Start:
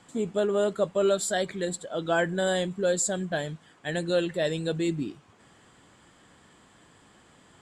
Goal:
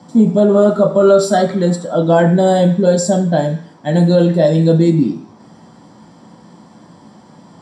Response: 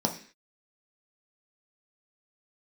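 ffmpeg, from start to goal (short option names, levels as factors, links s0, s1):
-filter_complex "[0:a]asettb=1/sr,asplit=3[s0][s1][s2];[s0]atrim=end=0.514[s3];[s1]atrim=start=0.51:end=1.95,asetpts=PTS-STARTPTS,afade=t=in:d=0.004:c=qsin,afade=t=out:st=1.436:d=0.004:c=qsin,equalizer=f=1300:w=6.2:g=14[s4];[s2]atrim=start=1.946[s5];[s3][s4]acrossfade=d=0.004:c1=hsin:c2=qsin[s6];[s6][s5]acrossfade=d=0.004:c1=qsin:c2=hsin[s7];[1:a]atrim=start_sample=2205[s8];[s7][s8]afir=irnorm=-1:irlink=0,alimiter=level_in=1.41:limit=0.891:release=50:level=0:latency=1,volume=0.891"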